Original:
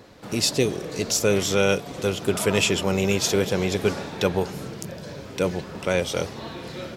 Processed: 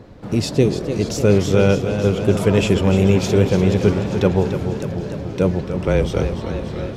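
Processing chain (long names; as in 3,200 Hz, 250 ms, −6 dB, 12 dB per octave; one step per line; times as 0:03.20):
0:05.85–0:06.36: frequency shifter −25 Hz
spectral tilt −3 dB per octave
feedback echo with a swinging delay time 295 ms, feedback 68%, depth 85 cents, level −9 dB
level +1.5 dB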